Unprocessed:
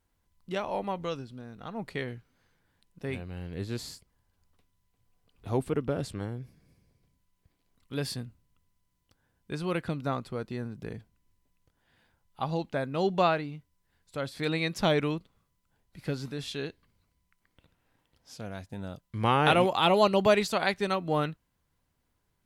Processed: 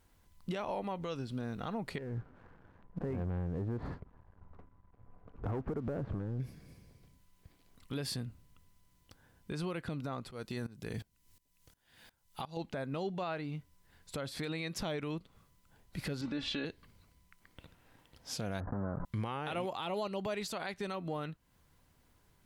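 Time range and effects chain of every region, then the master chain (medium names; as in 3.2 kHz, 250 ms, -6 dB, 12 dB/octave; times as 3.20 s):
1.98–6.40 s: low-pass 1.4 kHz 24 dB/octave + compression 16:1, threshold -43 dBFS + waveshaping leveller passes 2
10.31–12.57 s: treble shelf 2.7 kHz +11.5 dB + sawtooth tremolo in dB swelling 2.8 Hz, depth 20 dB
16.21–16.65 s: low-pass 3.5 kHz + comb 3.5 ms, depth 67%
18.60–19.05 s: block-companded coder 3-bit + steep low-pass 1.5 kHz 48 dB/octave + decay stretcher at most 28 dB/s
whole clip: compression 6:1, threshold -40 dBFS; peak limiter -36 dBFS; trim +8 dB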